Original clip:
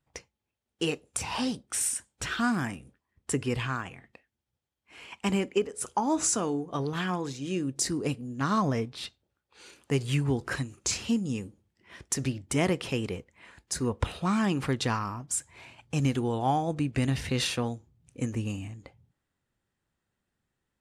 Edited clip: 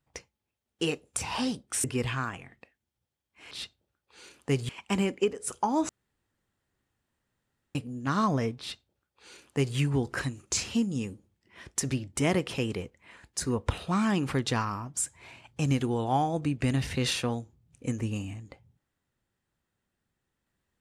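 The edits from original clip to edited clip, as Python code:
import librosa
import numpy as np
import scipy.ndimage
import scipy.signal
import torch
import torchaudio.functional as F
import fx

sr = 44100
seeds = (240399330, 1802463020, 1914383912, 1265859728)

y = fx.edit(x, sr, fx.cut(start_s=1.84, length_s=1.52),
    fx.room_tone_fill(start_s=6.23, length_s=1.86),
    fx.duplicate(start_s=8.93, length_s=1.18, to_s=5.03), tone=tone)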